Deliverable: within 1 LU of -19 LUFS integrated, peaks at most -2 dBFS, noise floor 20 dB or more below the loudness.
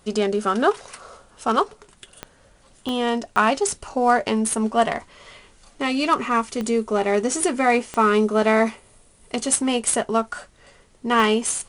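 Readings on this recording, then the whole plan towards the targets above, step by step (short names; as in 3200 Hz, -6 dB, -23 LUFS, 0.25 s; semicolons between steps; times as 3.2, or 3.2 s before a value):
clicks 6; loudness -21.5 LUFS; peak -3.5 dBFS; loudness target -19.0 LUFS
-> de-click; gain +2.5 dB; limiter -2 dBFS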